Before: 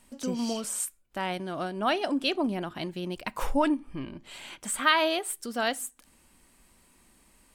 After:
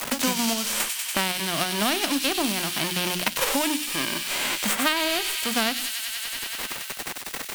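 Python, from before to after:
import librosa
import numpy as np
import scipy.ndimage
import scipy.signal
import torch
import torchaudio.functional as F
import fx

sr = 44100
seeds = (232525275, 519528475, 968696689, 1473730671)

p1 = fx.envelope_flatten(x, sr, power=0.3)
p2 = fx.peak_eq(p1, sr, hz=2800.0, db=3.5, octaves=1.2)
p3 = fx.level_steps(p2, sr, step_db=15)
p4 = p2 + (p3 * librosa.db_to_amplitude(-2.5))
p5 = fx.hum_notches(p4, sr, base_hz=60, count=6)
p6 = fx.quant_dither(p5, sr, seeds[0], bits=8, dither='none')
p7 = fx.echo_wet_highpass(p6, sr, ms=95, feedback_pct=71, hz=2800.0, wet_db=-4)
y = fx.band_squash(p7, sr, depth_pct=100)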